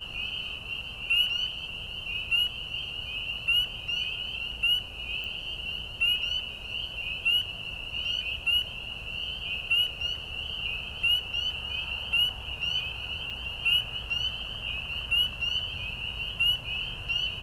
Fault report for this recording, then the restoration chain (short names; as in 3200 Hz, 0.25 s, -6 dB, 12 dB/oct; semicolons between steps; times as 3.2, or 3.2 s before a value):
5.24 pop
13.3 gap 4 ms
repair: de-click; interpolate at 13.3, 4 ms